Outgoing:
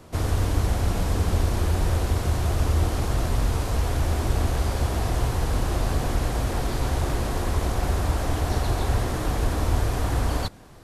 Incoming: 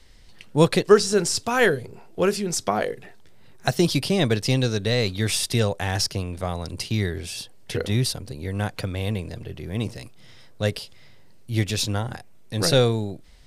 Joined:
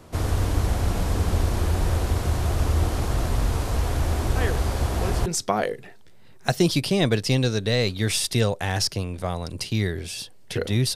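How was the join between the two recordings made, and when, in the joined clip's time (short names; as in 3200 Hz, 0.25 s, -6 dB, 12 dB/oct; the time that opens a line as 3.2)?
outgoing
4.36 add incoming from 1.55 s 0.90 s -11 dB
5.26 switch to incoming from 2.45 s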